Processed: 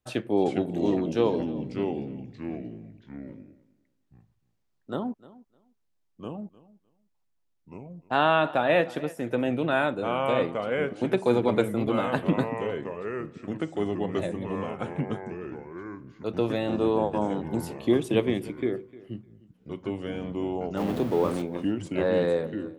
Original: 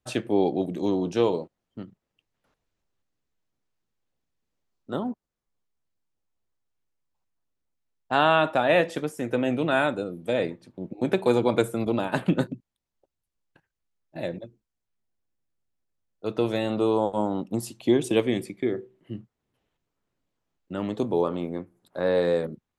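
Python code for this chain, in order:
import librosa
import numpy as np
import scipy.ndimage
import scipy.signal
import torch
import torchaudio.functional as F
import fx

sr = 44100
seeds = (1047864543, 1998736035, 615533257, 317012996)

p1 = fx.zero_step(x, sr, step_db=-31.5, at=(20.77, 21.42))
p2 = fx.dynamic_eq(p1, sr, hz=7400.0, q=0.93, threshold_db=-51.0, ratio=4.0, max_db=-7)
p3 = fx.echo_pitch(p2, sr, ms=378, semitones=-3, count=3, db_per_echo=-6.0)
p4 = p3 + fx.echo_feedback(p3, sr, ms=304, feedback_pct=17, wet_db=-20.0, dry=0)
y = F.gain(torch.from_numpy(p4), -1.5).numpy()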